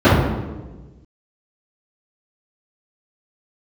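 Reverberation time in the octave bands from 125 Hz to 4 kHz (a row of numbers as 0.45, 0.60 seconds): 1.7, 1.5, 1.4, 1.1, 0.90, 0.80 seconds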